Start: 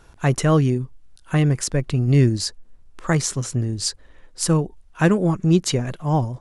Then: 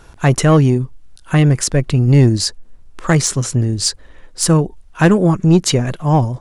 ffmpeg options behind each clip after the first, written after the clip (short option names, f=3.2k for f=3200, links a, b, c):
-af "acontrast=90"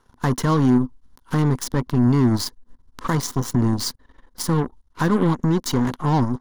-af "alimiter=limit=-13.5dB:level=0:latency=1:release=133,aeval=exprs='0.211*(cos(1*acos(clip(val(0)/0.211,-1,1)))-cos(1*PI/2))+0.0335*(cos(3*acos(clip(val(0)/0.211,-1,1)))-cos(3*PI/2))+0.0168*(cos(7*acos(clip(val(0)/0.211,-1,1)))-cos(7*PI/2))+0.0168*(cos(8*acos(clip(val(0)/0.211,-1,1)))-cos(8*PI/2))':c=same,equalizer=f=250:t=o:w=0.33:g=10,equalizer=f=630:t=o:w=0.33:g=-6,equalizer=f=1k:t=o:w=0.33:g=9,equalizer=f=2.5k:t=o:w=0.33:g=-11,equalizer=f=8k:t=o:w=0.33:g=-8"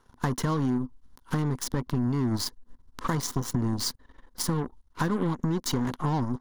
-af "acompressor=threshold=-21dB:ratio=6,volume=-2dB"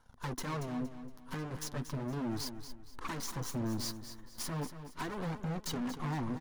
-af "asoftclip=type=hard:threshold=-31dB,flanger=delay=1.3:depth=9.3:regen=-23:speed=0.37:shape=sinusoidal,aecho=1:1:233|466|699|932:0.282|0.0958|0.0326|0.0111"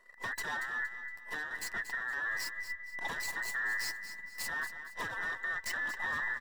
-af "afftfilt=real='real(if(between(b,1,1012),(2*floor((b-1)/92)+1)*92-b,b),0)':imag='imag(if(between(b,1,1012),(2*floor((b-1)/92)+1)*92-b,b),0)*if(between(b,1,1012),-1,1)':win_size=2048:overlap=0.75"